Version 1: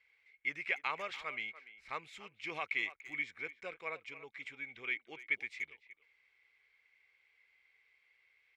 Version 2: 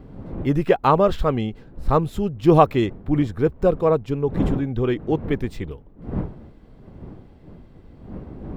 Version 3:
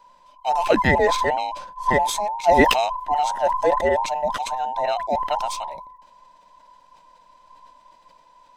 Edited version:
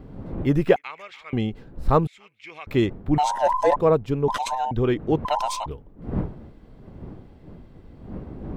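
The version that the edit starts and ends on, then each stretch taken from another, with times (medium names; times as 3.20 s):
2
0.76–1.33 s: from 1
2.07–2.67 s: from 1
3.18–3.76 s: from 3
4.28–4.71 s: from 3
5.25–5.66 s: from 3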